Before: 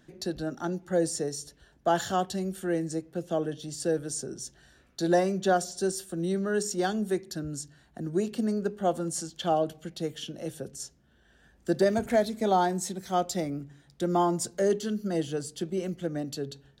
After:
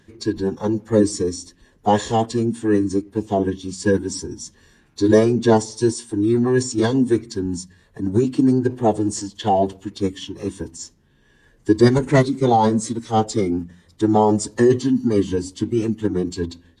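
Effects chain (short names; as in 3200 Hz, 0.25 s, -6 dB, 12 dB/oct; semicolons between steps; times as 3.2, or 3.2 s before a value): formant-preserving pitch shift -8.5 st; dynamic EQ 240 Hz, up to +7 dB, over -41 dBFS, Q 0.82; gain +6.5 dB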